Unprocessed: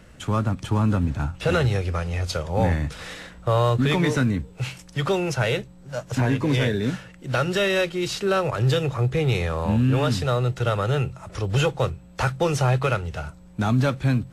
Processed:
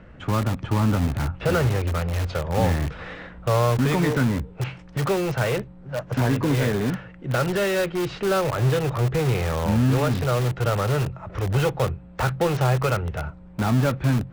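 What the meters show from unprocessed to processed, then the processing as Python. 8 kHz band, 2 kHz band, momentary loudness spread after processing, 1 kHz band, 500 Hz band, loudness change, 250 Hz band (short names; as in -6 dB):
+0.5 dB, -1.0 dB, 9 LU, +0.5 dB, 0.0 dB, 0.0 dB, 0.0 dB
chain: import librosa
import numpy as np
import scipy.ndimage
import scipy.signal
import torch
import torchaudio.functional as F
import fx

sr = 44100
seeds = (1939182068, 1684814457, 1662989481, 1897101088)

p1 = scipy.signal.sosfilt(scipy.signal.butter(2, 2000.0, 'lowpass', fs=sr, output='sos'), x)
p2 = (np.mod(10.0 ** (21.5 / 20.0) * p1 + 1.0, 2.0) - 1.0) / 10.0 ** (21.5 / 20.0)
y = p1 + (p2 * librosa.db_to_amplitude(-8.0))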